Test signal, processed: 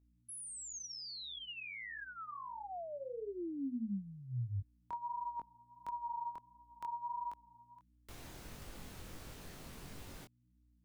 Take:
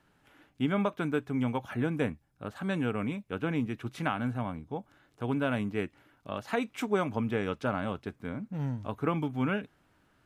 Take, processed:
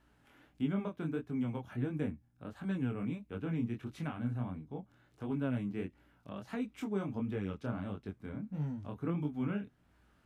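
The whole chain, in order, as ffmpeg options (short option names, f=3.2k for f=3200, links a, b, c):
-filter_complex "[0:a]acrossover=split=350[a][b];[b]acompressor=threshold=-58dB:ratio=1.5[c];[a][c]amix=inputs=2:normalize=0,aeval=exprs='val(0)+0.000501*(sin(2*PI*60*n/s)+sin(2*PI*2*60*n/s)/2+sin(2*PI*3*60*n/s)/3+sin(2*PI*4*60*n/s)/4+sin(2*PI*5*60*n/s)/5)':c=same,flanger=delay=19.5:depth=6.2:speed=1.5"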